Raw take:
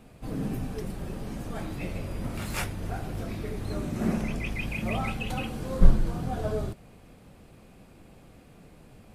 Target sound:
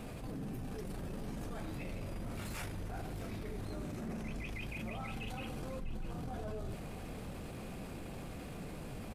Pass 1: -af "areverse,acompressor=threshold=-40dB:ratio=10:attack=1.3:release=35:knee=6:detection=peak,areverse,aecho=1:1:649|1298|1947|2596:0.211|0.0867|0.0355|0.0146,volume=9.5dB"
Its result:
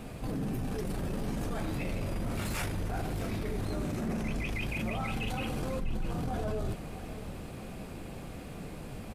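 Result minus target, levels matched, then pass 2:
compressor: peak gain reduction -8 dB
-af "areverse,acompressor=threshold=-49dB:ratio=10:attack=1.3:release=35:knee=6:detection=peak,areverse,aecho=1:1:649|1298|1947|2596:0.211|0.0867|0.0355|0.0146,volume=9.5dB"

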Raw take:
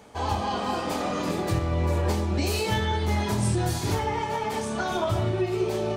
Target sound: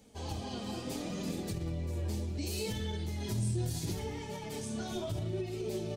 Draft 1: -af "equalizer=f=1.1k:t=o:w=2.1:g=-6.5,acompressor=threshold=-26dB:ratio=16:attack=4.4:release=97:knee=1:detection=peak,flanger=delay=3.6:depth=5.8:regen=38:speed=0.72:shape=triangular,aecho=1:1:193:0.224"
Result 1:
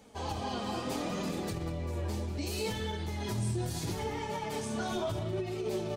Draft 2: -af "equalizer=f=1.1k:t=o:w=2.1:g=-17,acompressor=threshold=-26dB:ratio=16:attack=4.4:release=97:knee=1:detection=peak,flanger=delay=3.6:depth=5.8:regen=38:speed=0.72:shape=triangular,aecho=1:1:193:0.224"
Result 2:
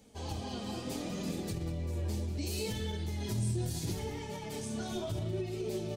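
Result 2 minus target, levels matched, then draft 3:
echo-to-direct +7.5 dB
-af "equalizer=f=1.1k:t=o:w=2.1:g=-17,acompressor=threshold=-26dB:ratio=16:attack=4.4:release=97:knee=1:detection=peak,flanger=delay=3.6:depth=5.8:regen=38:speed=0.72:shape=triangular,aecho=1:1:193:0.0944"

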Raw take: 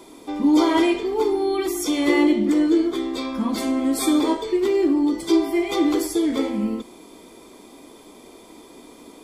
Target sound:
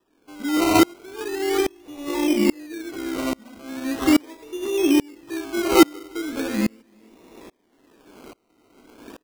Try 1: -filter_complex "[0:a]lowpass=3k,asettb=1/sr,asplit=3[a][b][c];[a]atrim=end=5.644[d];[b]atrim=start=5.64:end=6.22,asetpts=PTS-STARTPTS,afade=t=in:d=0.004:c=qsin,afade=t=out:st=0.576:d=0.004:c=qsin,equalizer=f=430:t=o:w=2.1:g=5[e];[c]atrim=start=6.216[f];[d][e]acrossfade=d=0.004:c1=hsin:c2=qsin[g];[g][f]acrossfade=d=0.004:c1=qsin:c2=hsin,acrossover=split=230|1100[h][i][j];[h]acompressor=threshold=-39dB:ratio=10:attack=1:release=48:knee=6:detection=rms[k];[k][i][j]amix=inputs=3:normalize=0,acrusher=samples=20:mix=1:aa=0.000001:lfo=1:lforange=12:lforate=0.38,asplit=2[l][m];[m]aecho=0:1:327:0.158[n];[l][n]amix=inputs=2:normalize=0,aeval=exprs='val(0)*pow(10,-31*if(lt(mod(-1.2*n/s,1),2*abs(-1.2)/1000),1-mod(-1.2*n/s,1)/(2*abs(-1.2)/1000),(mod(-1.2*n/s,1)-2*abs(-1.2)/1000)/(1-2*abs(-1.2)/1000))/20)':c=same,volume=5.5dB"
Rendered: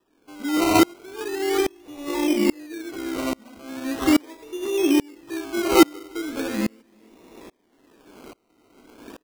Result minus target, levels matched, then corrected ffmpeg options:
compressor: peak gain reduction +10 dB
-filter_complex "[0:a]lowpass=3k,asettb=1/sr,asplit=3[a][b][c];[a]atrim=end=5.644[d];[b]atrim=start=5.64:end=6.22,asetpts=PTS-STARTPTS,afade=t=in:d=0.004:c=qsin,afade=t=out:st=0.576:d=0.004:c=qsin,equalizer=f=430:t=o:w=2.1:g=5[e];[c]atrim=start=6.216[f];[d][e]acrossfade=d=0.004:c1=hsin:c2=qsin[g];[g][f]acrossfade=d=0.004:c1=qsin:c2=hsin,acrossover=split=230|1100[h][i][j];[h]acompressor=threshold=-28dB:ratio=10:attack=1:release=48:knee=6:detection=rms[k];[k][i][j]amix=inputs=3:normalize=0,acrusher=samples=20:mix=1:aa=0.000001:lfo=1:lforange=12:lforate=0.38,asplit=2[l][m];[m]aecho=0:1:327:0.158[n];[l][n]amix=inputs=2:normalize=0,aeval=exprs='val(0)*pow(10,-31*if(lt(mod(-1.2*n/s,1),2*abs(-1.2)/1000),1-mod(-1.2*n/s,1)/(2*abs(-1.2)/1000),(mod(-1.2*n/s,1)-2*abs(-1.2)/1000)/(1-2*abs(-1.2)/1000))/20)':c=same,volume=5.5dB"

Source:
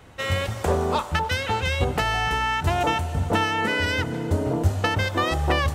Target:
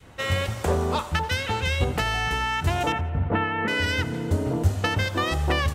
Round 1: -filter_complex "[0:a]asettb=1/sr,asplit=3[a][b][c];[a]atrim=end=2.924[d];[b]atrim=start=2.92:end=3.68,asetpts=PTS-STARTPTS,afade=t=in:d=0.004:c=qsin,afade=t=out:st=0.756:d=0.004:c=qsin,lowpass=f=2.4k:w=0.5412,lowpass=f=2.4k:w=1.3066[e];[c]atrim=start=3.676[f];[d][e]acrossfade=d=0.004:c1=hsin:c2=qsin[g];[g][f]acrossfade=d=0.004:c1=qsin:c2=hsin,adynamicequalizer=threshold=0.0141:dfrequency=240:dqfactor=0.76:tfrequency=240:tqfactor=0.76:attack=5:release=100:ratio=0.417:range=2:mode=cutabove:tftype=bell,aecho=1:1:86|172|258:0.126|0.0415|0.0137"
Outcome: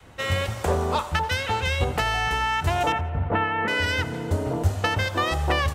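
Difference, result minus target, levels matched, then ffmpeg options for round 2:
250 Hz band -3.0 dB
-filter_complex "[0:a]asettb=1/sr,asplit=3[a][b][c];[a]atrim=end=2.924[d];[b]atrim=start=2.92:end=3.68,asetpts=PTS-STARTPTS,afade=t=in:d=0.004:c=qsin,afade=t=out:st=0.756:d=0.004:c=qsin,lowpass=f=2.4k:w=0.5412,lowpass=f=2.4k:w=1.3066[e];[c]atrim=start=3.676[f];[d][e]acrossfade=d=0.004:c1=hsin:c2=qsin[g];[g][f]acrossfade=d=0.004:c1=qsin:c2=hsin,adynamicequalizer=threshold=0.0141:dfrequency=750:dqfactor=0.76:tfrequency=750:tqfactor=0.76:attack=5:release=100:ratio=0.417:range=2:mode=cutabove:tftype=bell,aecho=1:1:86|172|258:0.126|0.0415|0.0137"

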